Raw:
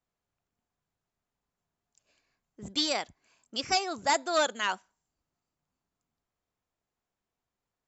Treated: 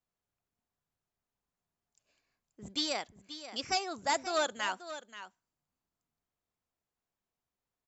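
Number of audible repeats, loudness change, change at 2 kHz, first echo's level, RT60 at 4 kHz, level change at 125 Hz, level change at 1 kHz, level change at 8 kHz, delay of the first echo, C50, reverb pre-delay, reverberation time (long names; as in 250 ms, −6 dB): 1, −4.5 dB, −4.0 dB, −12.5 dB, no reverb audible, −4.5 dB, −4.5 dB, can't be measured, 532 ms, no reverb audible, no reverb audible, no reverb audible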